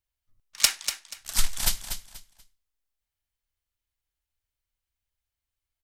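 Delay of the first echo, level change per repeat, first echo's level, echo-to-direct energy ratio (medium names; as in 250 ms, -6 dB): 241 ms, -12.0 dB, -9.0 dB, -8.5 dB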